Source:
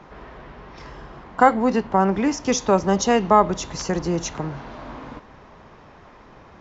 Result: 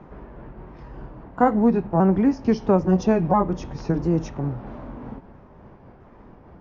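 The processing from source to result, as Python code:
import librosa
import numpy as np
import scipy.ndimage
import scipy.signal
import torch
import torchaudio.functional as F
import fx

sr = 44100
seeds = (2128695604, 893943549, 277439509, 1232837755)

y = fx.pitch_ramps(x, sr, semitones=-2.5, every_ms=667)
y = fx.curve_eq(y, sr, hz=(240.0, 2500.0, 3900.0), db=(0, -13, -19))
y = fx.quant_float(y, sr, bits=8)
y = y * librosa.db_to_amplitude(4.0)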